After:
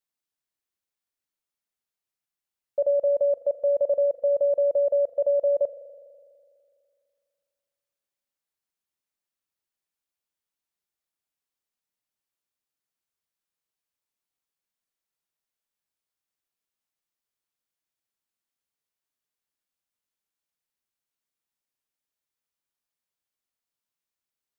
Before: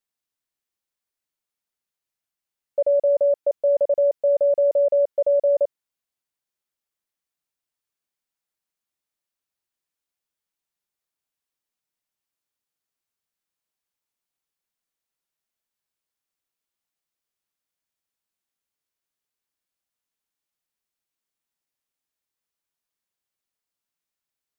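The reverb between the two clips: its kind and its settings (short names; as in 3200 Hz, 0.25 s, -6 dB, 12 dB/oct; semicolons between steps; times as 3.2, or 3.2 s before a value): spring tank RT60 2.3 s, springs 41 ms, chirp 25 ms, DRR 13.5 dB; gain -3 dB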